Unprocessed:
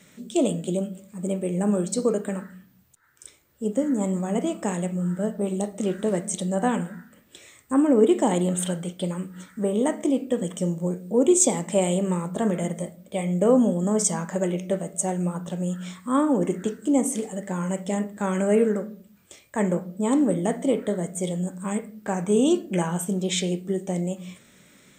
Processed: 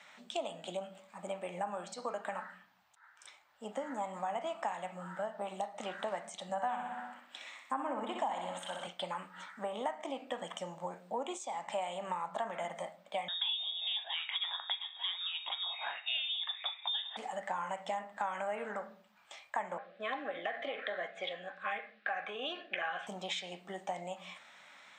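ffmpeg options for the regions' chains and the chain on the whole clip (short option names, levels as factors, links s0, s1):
-filter_complex "[0:a]asettb=1/sr,asplit=3[s0][s1][s2];[s0]atrim=end=6.494[s3];[s1]atrim=start=6.49:end=8.87,asetpts=PTS-STARTPTS,afade=t=in:d=0.004:c=qsin,afade=t=out:st=2.376:d=0.004:c=qsin,lowshelf=f=170:t=q:w=3:g=-6.5,bandreject=f=410:w=5.5,aecho=1:1:62|124|186|248|310|372|434:0.447|0.259|0.15|0.0872|0.0505|0.0293|0.017,atrim=end_sample=104958[s4];[s2]atrim=start=8.866[s5];[s3][s4]acrossfade=d=0.004:c1=hsin:c2=qsin[s6];[s6][s5]acrossfade=d=0.004:c1=qsin:c2=hsin,asettb=1/sr,asplit=3[s7][s8][s9];[s7]atrim=end=13.284[s10];[s8]atrim=start=13.28:end=17.17,asetpts=PTS-STARTPTS,afade=t=in:d=0.004:c=qsin,afade=t=out:st=3.886:d=0.004:c=qsin,highpass=330,highshelf=f=2200:g=10.5,lowpass=f=3300:t=q:w=0.5098,lowpass=f=3300:t=q:w=0.6013,lowpass=f=3300:t=q:w=0.9,lowpass=f=3300:t=q:w=2.563,afreqshift=-3900[s11];[s9]atrim=start=17.166[s12];[s10][s11]acrossfade=d=0.004:c1=hsin:c2=qsin[s13];[s13][s12]acrossfade=d=0.004:c1=qsin:c2=hsin,asettb=1/sr,asplit=3[s14][s15][s16];[s14]atrim=end=19.784[s17];[s15]atrim=start=19.78:end=23.07,asetpts=PTS-STARTPTS,afade=t=in:d=0.004:c=qsin,afade=t=out:st=3.286:d=0.004:c=qsin,highpass=330,equalizer=f=460:t=q:w=4:g=4,equalizer=f=710:t=q:w=4:g=-5,equalizer=f=1200:t=q:w=4:g=-5,equalizer=f=1700:t=q:w=4:g=9,equalizer=f=2500:t=q:w=4:g=7,equalizer=f=3700:t=q:w=4:g=5,lowpass=f=4200:w=0.5412,lowpass=f=4200:w=1.3066,acompressor=threshold=0.0631:ratio=6:attack=3.2:release=140:knee=1:detection=peak,asuperstop=centerf=920:order=20:qfactor=4.5[s18];[s16]atrim=start=23.066[s19];[s17][s18]acrossfade=d=0.004:c1=hsin:c2=qsin[s20];[s20][s19]acrossfade=d=0.004:c1=qsin:c2=hsin,lowshelf=f=570:t=q:w=3:g=-11.5,acompressor=threshold=0.02:ratio=6,acrossover=split=260 4900:gain=0.178 1 0.0891[s21][s22][s23];[s21][s22][s23]amix=inputs=3:normalize=0,volume=1.12"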